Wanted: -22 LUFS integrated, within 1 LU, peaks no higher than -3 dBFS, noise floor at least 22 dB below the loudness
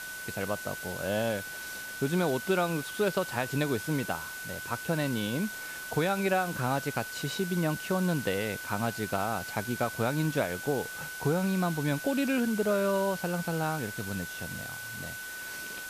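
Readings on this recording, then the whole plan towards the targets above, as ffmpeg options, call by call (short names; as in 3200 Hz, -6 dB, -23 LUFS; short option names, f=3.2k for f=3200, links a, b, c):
steady tone 1500 Hz; tone level -39 dBFS; noise floor -40 dBFS; noise floor target -53 dBFS; loudness -31.0 LUFS; peak -14.5 dBFS; loudness target -22.0 LUFS
-> -af "bandreject=f=1.5k:w=30"
-af "afftdn=nr=13:nf=-40"
-af "volume=9dB"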